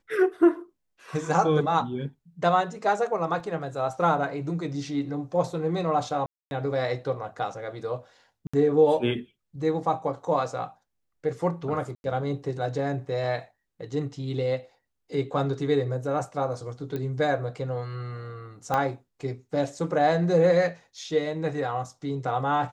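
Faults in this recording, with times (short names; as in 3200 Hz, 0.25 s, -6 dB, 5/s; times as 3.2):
3.4 gap 2.5 ms
6.26–6.51 gap 0.251 s
8.47–8.54 gap 65 ms
11.95–12.04 gap 91 ms
16.96 pop -20 dBFS
18.74 pop -13 dBFS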